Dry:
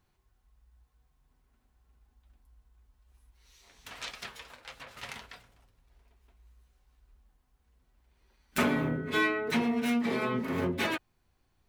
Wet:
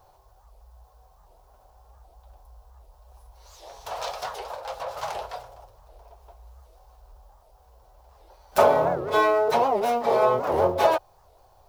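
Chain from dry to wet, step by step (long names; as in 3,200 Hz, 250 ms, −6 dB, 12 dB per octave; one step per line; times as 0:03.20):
mu-law and A-law mismatch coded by mu
drawn EQ curve 100 Hz 0 dB, 250 Hz −14 dB, 570 Hz +15 dB, 840 Hz +14 dB, 2,000 Hz −9 dB, 5,300 Hz +1 dB, 8,400 Hz −4 dB, 12,000 Hz 0 dB
wow of a warped record 78 rpm, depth 250 cents
level +3 dB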